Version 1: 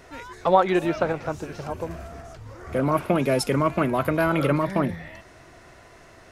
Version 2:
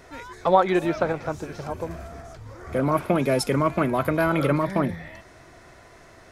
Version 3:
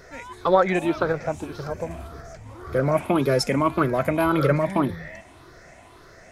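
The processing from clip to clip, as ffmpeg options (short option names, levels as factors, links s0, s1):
-af "bandreject=f=2800:w=13"
-af "afftfilt=real='re*pow(10,9/40*sin(2*PI*(0.58*log(max(b,1)*sr/1024/100)/log(2)-(1.8)*(pts-256)/sr)))':imag='im*pow(10,9/40*sin(2*PI*(0.58*log(max(b,1)*sr/1024/100)/log(2)-(1.8)*(pts-256)/sr)))':win_size=1024:overlap=0.75"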